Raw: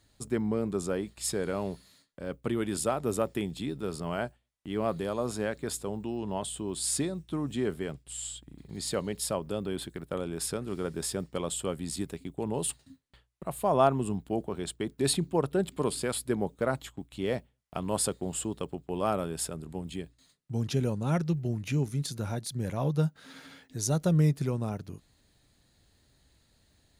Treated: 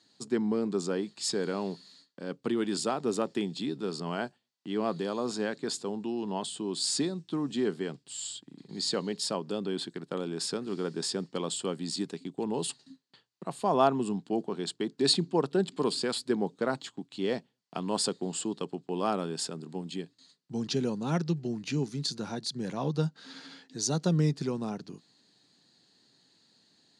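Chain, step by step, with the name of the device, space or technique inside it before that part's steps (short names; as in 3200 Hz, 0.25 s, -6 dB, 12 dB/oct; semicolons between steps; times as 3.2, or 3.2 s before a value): television speaker (speaker cabinet 170–7700 Hz, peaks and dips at 590 Hz -7 dB, 1300 Hz -3 dB, 2200 Hz -5 dB, 4500 Hz +8 dB); gain +2 dB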